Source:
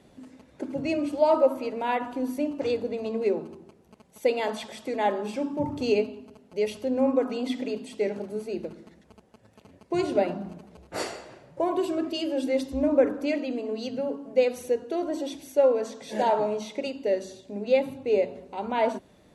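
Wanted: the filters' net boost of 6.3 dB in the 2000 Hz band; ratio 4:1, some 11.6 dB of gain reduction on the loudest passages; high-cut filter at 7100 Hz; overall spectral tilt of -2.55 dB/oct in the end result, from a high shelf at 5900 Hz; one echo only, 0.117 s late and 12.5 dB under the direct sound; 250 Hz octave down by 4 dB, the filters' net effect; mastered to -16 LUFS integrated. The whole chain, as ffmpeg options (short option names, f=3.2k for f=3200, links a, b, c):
-af "lowpass=7.1k,equalizer=f=250:t=o:g=-5,equalizer=f=2k:t=o:g=7,highshelf=f=5.9k:g=6.5,acompressor=threshold=-30dB:ratio=4,aecho=1:1:117:0.237,volume=18.5dB"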